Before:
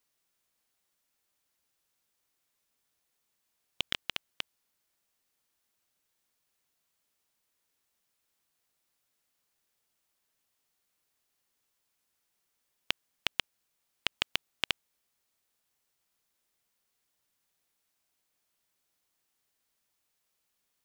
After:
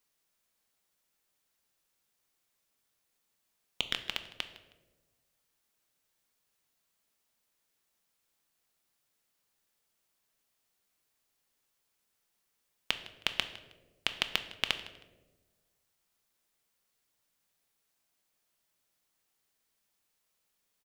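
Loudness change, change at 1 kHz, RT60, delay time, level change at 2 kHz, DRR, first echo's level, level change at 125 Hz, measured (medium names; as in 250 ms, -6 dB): +0.5 dB, +0.5 dB, 1.3 s, 158 ms, +0.5 dB, 8.0 dB, -19.0 dB, +0.5 dB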